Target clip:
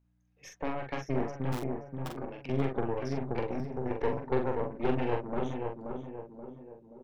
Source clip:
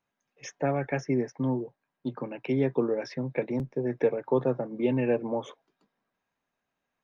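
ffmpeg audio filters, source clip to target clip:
ffmpeg -i in.wav -filter_complex "[0:a]asplit=3[link_01][link_02][link_03];[link_01]afade=type=out:start_time=1.52:duration=0.02[link_04];[link_02]aeval=exprs='(mod(16.8*val(0)+1,2)-1)/16.8':channel_layout=same,afade=type=in:start_time=1.52:duration=0.02,afade=type=out:start_time=2.07:duration=0.02[link_05];[link_03]afade=type=in:start_time=2.07:duration=0.02[link_06];[link_04][link_05][link_06]amix=inputs=3:normalize=0,asplit=2[link_07][link_08];[link_08]adelay=529,lowpass=frequency=1400:poles=1,volume=-4dB,asplit=2[link_09][link_10];[link_10]adelay=529,lowpass=frequency=1400:poles=1,volume=0.53,asplit=2[link_11][link_12];[link_12]adelay=529,lowpass=frequency=1400:poles=1,volume=0.53,asplit=2[link_13][link_14];[link_14]adelay=529,lowpass=frequency=1400:poles=1,volume=0.53,asplit=2[link_15][link_16];[link_16]adelay=529,lowpass=frequency=1400:poles=1,volume=0.53,asplit=2[link_17][link_18];[link_18]adelay=529,lowpass=frequency=1400:poles=1,volume=0.53,asplit=2[link_19][link_20];[link_20]adelay=529,lowpass=frequency=1400:poles=1,volume=0.53[link_21];[link_09][link_11][link_13][link_15][link_17][link_19][link_21]amix=inputs=7:normalize=0[link_22];[link_07][link_22]amix=inputs=2:normalize=0,aeval=exprs='val(0)+0.000891*(sin(2*PI*60*n/s)+sin(2*PI*2*60*n/s)/2+sin(2*PI*3*60*n/s)/3+sin(2*PI*4*60*n/s)/4+sin(2*PI*5*60*n/s)/5)':channel_layout=same,aeval=exprs='0.266*(cos(1*acos(clip(val(0)/0.266,-1,1)))-cos(1*PI/2))+0.0668*(cos(4*acos(clip(val(0)/0.266,-1,1)))-cos(4*PI/2))+0.015*(cos(8*acos(clip(val(0)/0.266,-1,1)))-cos(8*PI/2))':channel_layout=same,asplit=2[link_23][link_24];[link_24]adelay=44,volume=-4.5dB[link_25];[link_23][link_25]amix=inputs=2:normalize=0,volume=-8.5dB" out.wav

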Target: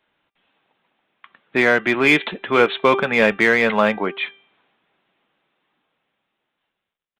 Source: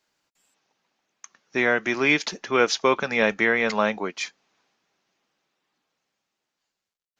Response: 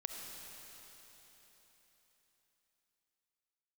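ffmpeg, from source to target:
-filter_complex "[0:a]aresample=8000,aresample=44100,bandreject=frequency=394.2:width_type=h:width=4,bandreject=frequency=788.4:width_type=h:width=4,bandreject=frequency=1182.6:width_type=h:width=4,bandreject=frequency=1576.8:width_type=h:width=4,bandreject=frequency=1971:width_type=h:width=4,bandreject=frequency=2365.2:width_type=h:width=4,bandreject=frequency=2759.4:width_type=h:width=4,bandreject=frequency=3153.6:width_type=h:width=4,bandreject=frequency=3547.8:width_type=h:width=4,bandreject=frequency=3942:width_type=h:width=4,asplit=2[link_01][link_02];[link_02]volume=19dB,asoftclip=hard,volume=-19dB,volume=-4dB[link_03];[link_01][link_03]amix=inputs=2:normalize=0,volume=2.5dB"

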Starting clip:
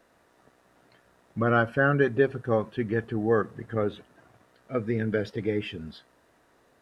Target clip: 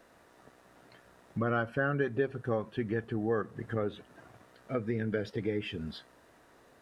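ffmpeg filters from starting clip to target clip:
ffmpeg -i in.wav -af "acompressor=threshold=-37dB:ratio=2,volume=2.5dB" out.wav

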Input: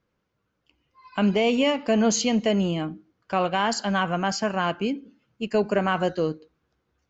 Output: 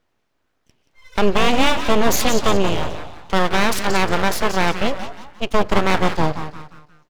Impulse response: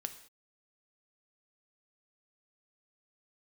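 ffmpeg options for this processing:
-filter_complex "[0:a]aeval=exprs='0.299*(cos(1*acos(clip(val(0)/0.299,-1,1)))-cos(1*PI/2))+0.0299*(cos(4*acos(clip(val(0)/0.299,-1,1)))-cos(4*PI/2))':channel_layout=same,asplit=5[link_01][link_02][link_03][link_04][link_05];[link_02]adelay=177,afreqshift=73,volume=-9.5dB[link_06];[link_03]adelay=354,afreqshift=146,volume=-17.7dB[link_07];[link_04]adelay=531,afreqshift=219,volume=-25.9dB[link_08];[link_05]adelay=708,afreqshift=292,volume=-34dB[link_09];[link_01][link_06][link_07][link_08][link_09]amix=inputs=5:normalize=0,aeval=exprs='abs(val(0))':channel_layout=same,volume=7dB"

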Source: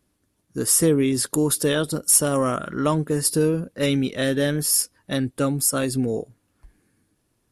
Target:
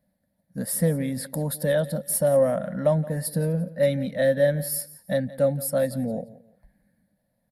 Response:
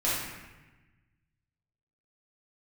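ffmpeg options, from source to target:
-filter_complex "[0:a]firequalizer=gain_entry='entry(110,0);entry(190,14);entry(380,-19);entry(540,15);entry(1200,-9);entry(1800,7);entry(2700,-10);entry(4100,1);entry(6200,-14);entry(12000,4)':delay=0.05:min_phase=1,asplit=2[link_01][link_02];[link_02]aecho=0:1:173|346:0.119|0.0345[link_03];[link_01][link_03]amix=inputs=2:normalize=0,volume=-7.5dB"

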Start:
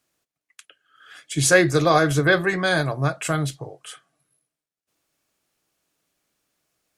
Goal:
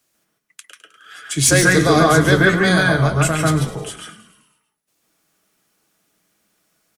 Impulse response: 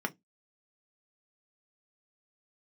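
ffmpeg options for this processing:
-filter_complex "[0:a]acrossover=split=130|3000[link_01][link_02][link_03];[link_02]acompressor=threshold=-23dB:ratio=1.5[link_04];[link_01][link_04][link_03]amix=inputs=3:normalize=0,highshelf=frequency=5000:gain=6,asoftclip=type=tanh:threshold=-7.5dB,asplit=7[link_05][link_06][link_07][link_08][link_09][link_10][link_11];[link_06]adelay=104,afreqshift=-61,volume=-13dB[link_12];[link_07]adelay=208,afreqshift=-122,volume=-17.9dB[link_13];[link_08]adelay=312,afreqshift=-183,volume=-22.8dB[link_14];[link_09]adelay=416,afreqshift=-244,volume=-27.6dB[link_15];[link_10]adelay=520,afreqshift=-305,volume=-32.5dB[link_16];[link_11]adelay=624,afreqshift=-366,volume=-37.4dB[link_17];[link_05][link_12][link_13][link_14][link_15][link_16][link_17]amix=inputs=7:normalize=0,asplit=2[link_18][link_19];[1:a]atrim=start_sample=2205,adelay=141[link_20];[link_19][link_20]afir=irnorm=-1:irlink=0,volume=-3dB[link_21];[link_18][link_21]amix=inputs=2:normalize=0,volume=3dB"

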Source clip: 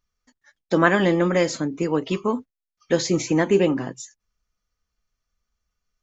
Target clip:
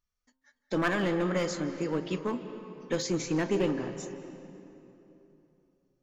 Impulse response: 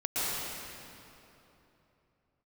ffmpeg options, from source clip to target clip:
-filter_complex "[0:a]bandreject=frequency=131.5:width_type=h:width=4,bandreject=frequency=263:width_type=h:width=4,bandreject=frequency=394.5:width_type=h:width=4,bandreject=frequency=526:width_type=h:width=4,bandreject=frequency=657.5:width_type=h:width=4,bandreject=frequency=789:width_type=h:width=4,bandreject=frequency=920.5:width_type=h:width=4,bandreject=frequency=1052:width_type=h:width=4,bandreject=frequency=1183.5:width_type=h:width=4,bandreject=frequency=1315:width_type=h:width=4,bandreject=frequency=1446.5:width_type=h:width=4,bandreject=frequency=1578:width_type=h:width=4,aeval=exprs='clip(val(0),-1,0.141)':channel_layout=same,asplit=2[link_01][link_02];[1:a]atrim=start_sample=2205,lowpass=5300,adelay=38[link_03];[link_02][link_03]afir=irnorm=-1:irlink=0,volume=-19dB[link_04];[link_01][link_04]amix=inputs=2:normalize=0,volume=-8dB"

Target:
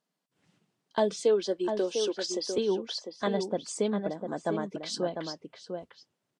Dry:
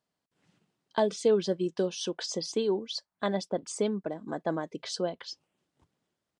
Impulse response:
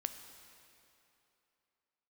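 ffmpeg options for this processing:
-filter_complex "[0:a]asettb=1/sr,asplit=3[link_01][link_02][link_03];[link_01]atrim=end=1.234[link_04];[link_02]atrim=start=1.23:end=2.58,asetpts=PTS-STARTPTS,afade=type=in:duration=0.004:curve=qsin,afade=type=out:start_time=1.346:duration=0.004:curve=qsin,highpass=frequency=260:width=0.5412,highpass=frequency=260:width=1.3066[link_05];[link_03]atrim=start=2.576[link_06];[link_04][link_05]acrossfade=duration=0.004:curve1=hsin:curve2=qsin[link_07];[link_07][link_06]acrossfade=duration=0.004:curve1=qsin:curve2=hsin,asplit=2[link_08][link_09];[link_09]adelay=699.7,volume=-6dB,highshelf=frequency=4000:gain=-15.7[link_10];[link_08][link_10]amix=inputs=2:normalize=0" -ar 44100 -c:a libvorbis -b:a 48k

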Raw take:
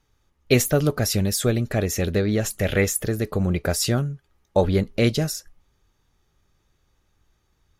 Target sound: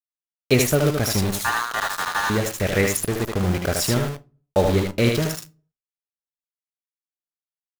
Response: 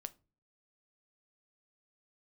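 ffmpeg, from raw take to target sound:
-filter_complex "[0:a]asettb=1/sr,asplit=3[link_01][link_02][link_03];[link_01]atrim=end=1.314[link_04];[link_02]atrim=start=1.31:end=2.3,asetpts=PTS-STARTPTS,afade=type=in:duration=0.004:curve=qsin,afade=type=out:start_time=0.986:duration=0.004:curve=qsin,aeval=exprs='val(0)*sin(2*PI*1300*n/s)':channel_layout=same[link_05];[link_03]atrim=start=2.296[link_06];[link_04][link_05]acrossfade=duration=0.004:curve1=hsin:curve2=qsin[link_07];[link_07][link_06]acrossfade=duration=0.004:curve1=qsin:curve2=hsin,aeval=exprs='val(0)*gte(abs(val(0)),0.0596)':channel_layout=same,asplit=2[link_08][link_09];[1:a]atrim=start_sample=2205,lowshelf=frequency=360:gain=-5,adelay=76[link_10];[link_09][link_10]afir=irnorm=-1:irlink=0,volume=1.5dB[link_11];[link_08][link_11]amix=inputs=2:normalize=0"

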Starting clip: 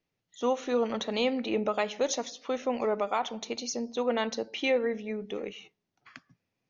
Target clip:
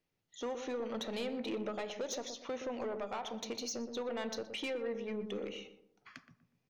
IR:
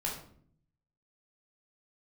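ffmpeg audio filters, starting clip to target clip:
-filter_complex "[0:a]acompressor=threshold=-31dB:ratio=6,asoftclip=type=tanh:threshold=-31dB,asplit=2[link_01][link_02];[link_02]adelay=121,lowpass=frequency=860:poles=1,volume=-7dB,asplit=2[link_03][link_04];[link_04]adelay=121,lowpass=frequency=860:poles=1,volume=0.4,asplit=2[link_05][link_06];[link_06]adelay=121,lowpass=frequency=860:poles=1,volume=0.4,asplit=2[link_07][link_08];[link_08]adelay=121,lowpass=frequency=860:poles=1,volume=0.4,asplit=2[link_09][link_10];[link_10]adelay=121,lowpass=frequency=860:poles=1,volume=0.4[link_11];[link_01][link_03][link_05][link_07][link_09][link_11]amix=inputs=6:normalize=0,asplit=2[link_12][link_13];[1:a]atrim=start_sample=2205[link_14];[link_13][link_14]afir=irnorm=-1:irlink=0,volume=-18.5dB[link_15];[link_12][link_15]amix=inputs=2:normalize=0,volume=-2.5dB"

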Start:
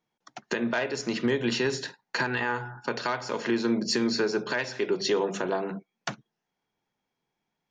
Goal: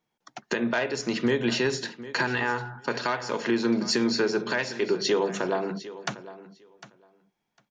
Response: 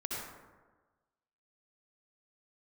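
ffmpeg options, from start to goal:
-af "aecho=1:1:753|1506:0.158|0.0238,volume=1.5dB"

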